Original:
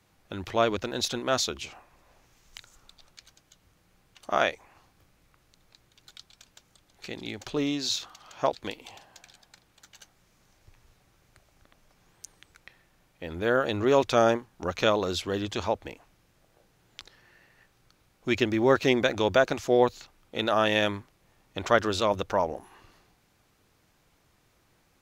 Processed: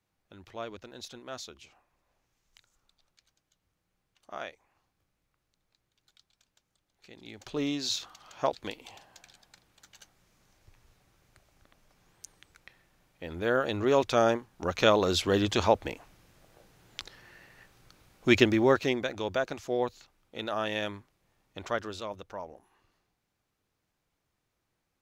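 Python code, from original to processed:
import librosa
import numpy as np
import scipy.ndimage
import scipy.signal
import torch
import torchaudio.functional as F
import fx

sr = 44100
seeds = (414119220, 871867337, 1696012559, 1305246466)

y = fx.gain(x, sr, db=fx.line((7.06, -15.0), (7.64, -2.5), (14.35, -2.5), (15.34, 4.5), (18.38, 4.5), (19.03, -8.0), (21.6, -8.0), (22.21, -14.5)))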